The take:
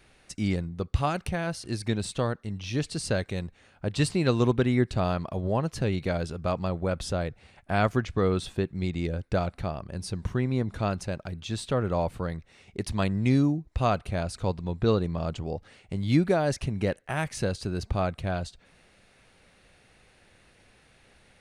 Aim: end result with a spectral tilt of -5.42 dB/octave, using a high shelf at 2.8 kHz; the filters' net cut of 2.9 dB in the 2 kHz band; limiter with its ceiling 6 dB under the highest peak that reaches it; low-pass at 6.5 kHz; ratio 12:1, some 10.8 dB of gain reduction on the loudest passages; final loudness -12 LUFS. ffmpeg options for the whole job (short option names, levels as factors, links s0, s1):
-af "lowpass=6500,equalizer=f=2000:t=o:g=-7,highshelf=f=2800:g=7,acompressor=threshold=0.0398:ratio=12,volume=16.8,alimiter=limit=1:level=0:latency=1"